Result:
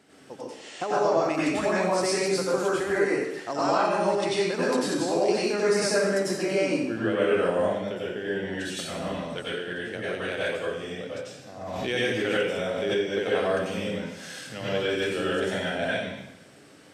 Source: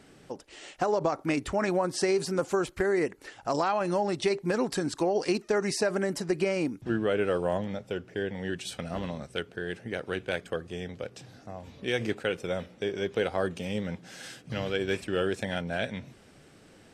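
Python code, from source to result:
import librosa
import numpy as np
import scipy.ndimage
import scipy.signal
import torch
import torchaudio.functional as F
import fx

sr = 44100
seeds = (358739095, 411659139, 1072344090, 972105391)

y = scipy.signal.sosfilt(scipy.signal.bessel(2, 170.0, 'highpass', norm='mag', fs=sr, output='sos'), x)
y = fx.rev_plate(y, sr, seeds[0], rt60_s=0.83, hf_ratio=1.0, predelay_ms=80, drr_db=-7.5)
y = fx.pre_swell(y, sr, db_per_s=29.0, at=(11.61, 13.11))
y = y * librosa.db_to_amplitude(-3.5)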